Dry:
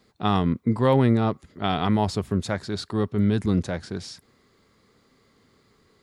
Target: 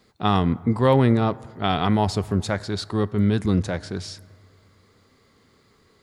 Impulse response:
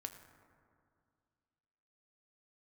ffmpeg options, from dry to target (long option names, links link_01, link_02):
-filter_complex "[0:a]asplit=2[link_01][link_02];[link_02]equalizer=frequency=240:width=1.4:gain=-9.5[link_03];[1:a]atrim=start_sample=2205[link_04];[link_03][link_04]afir=irnorm=-1:irlink=0,volume=-4.5dB[link_05];[link_01][link_05]amix=inputs=2:normalize=0"